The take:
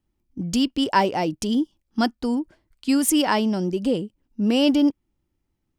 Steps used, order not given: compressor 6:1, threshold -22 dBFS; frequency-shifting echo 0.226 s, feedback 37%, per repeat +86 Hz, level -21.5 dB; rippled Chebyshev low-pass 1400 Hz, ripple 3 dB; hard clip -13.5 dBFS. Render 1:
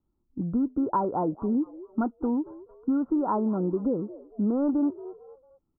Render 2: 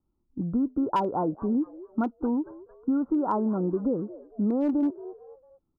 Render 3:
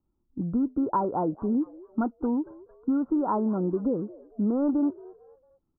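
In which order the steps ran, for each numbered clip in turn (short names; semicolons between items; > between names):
hard clip > frequency-shifting echo > rippled Chebyshev low-pass > compressor; rippled Chebyshev low-pass > frequency-shifting echo > hard clip > compressor; hard clip > rippled Chebyshev low-pass > compressor > frequency-shifting echo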